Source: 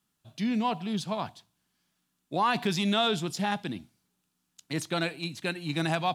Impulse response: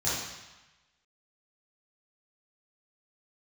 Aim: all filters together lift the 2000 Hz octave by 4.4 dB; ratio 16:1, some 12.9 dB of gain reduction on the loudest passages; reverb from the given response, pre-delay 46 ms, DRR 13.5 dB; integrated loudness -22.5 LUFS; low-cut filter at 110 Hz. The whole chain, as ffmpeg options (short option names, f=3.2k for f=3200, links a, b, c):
-filter_complex "[0:a]highpass=110,equalizer=f=2k:t=o:g=6,acompressor=threshold=-32dB:ratio=16,asplit=2[a][b];[1:a]atrim=start_sample=2205,adelay=46[c];[b][c]afir=irnorm=-1:irlink=0,volume=-23dB[d];[a][d]amix=inputs=2:normalize=0,volume=14.5dB"